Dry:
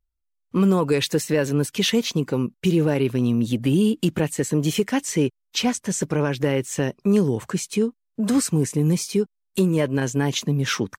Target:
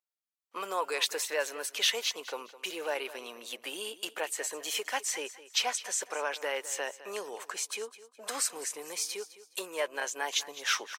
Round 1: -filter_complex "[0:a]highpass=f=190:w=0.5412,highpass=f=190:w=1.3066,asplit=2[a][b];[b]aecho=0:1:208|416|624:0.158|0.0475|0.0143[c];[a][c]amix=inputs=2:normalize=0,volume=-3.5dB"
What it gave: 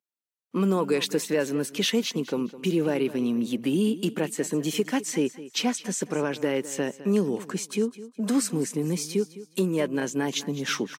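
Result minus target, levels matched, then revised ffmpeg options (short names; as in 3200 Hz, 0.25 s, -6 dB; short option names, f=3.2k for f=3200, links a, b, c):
250 Hz band +19.5 dB
-filter_complex "[0:a]highpass=f=610:w=0.5412,highpass=f=610:w=1.3066,asplit=2[a][b];[b]aecho=0:1:208|416|624:0.158|0.0475|0.0143[c];[a][c]amix=inputs=2:normalize=0,volume=-3.5dB"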